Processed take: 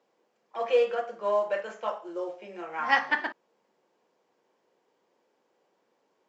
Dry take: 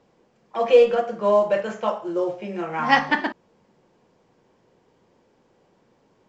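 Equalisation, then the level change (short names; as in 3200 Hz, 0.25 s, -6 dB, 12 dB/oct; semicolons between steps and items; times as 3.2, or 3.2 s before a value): HPF 380 Hz 12 dB/oct; dynamic EQ 1600 Hz, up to +5 dB, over -33 dBFS, Q 1.4; -8.0 dB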